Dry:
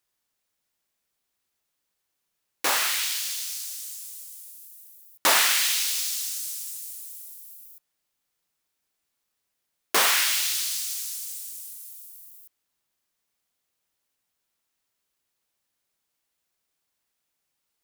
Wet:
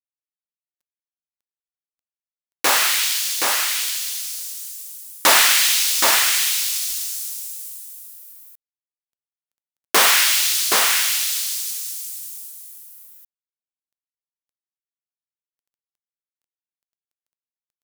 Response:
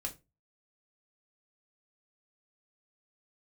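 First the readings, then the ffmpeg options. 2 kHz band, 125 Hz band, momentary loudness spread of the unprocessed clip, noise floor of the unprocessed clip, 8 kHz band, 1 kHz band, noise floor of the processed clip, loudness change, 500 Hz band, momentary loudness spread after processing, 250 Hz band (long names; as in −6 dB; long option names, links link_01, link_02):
+8.0 dB, can't be measured, 21 LU, −80 dBFS, +8.0 dB, +8.0 dB, below −85 dBFS, +7.0 dB, +8.0 dB, 19 LU, +8.0 dB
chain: -af "aecho=1:1:773:0.631,acrusher=bits=10:mix=0:aa=0.000001,acontrast=83"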